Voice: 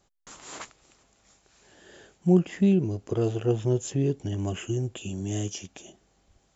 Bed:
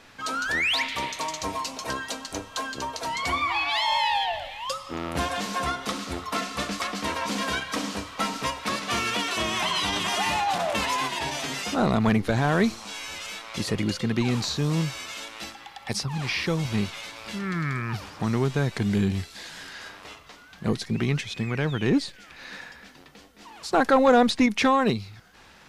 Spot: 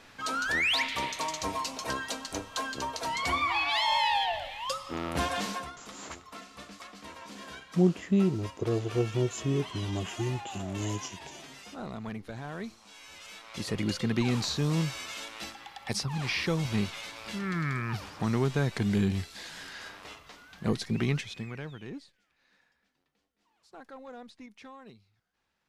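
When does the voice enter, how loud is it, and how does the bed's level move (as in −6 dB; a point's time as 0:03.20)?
5.50 s, −3.5 dB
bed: 0:05.50 −2.5 dB
0:05.71 −17 dB
0:12.78 −17 dB
0:13.93 −3 dB
0:21.10 −3 dB
0:22.33 −28 dB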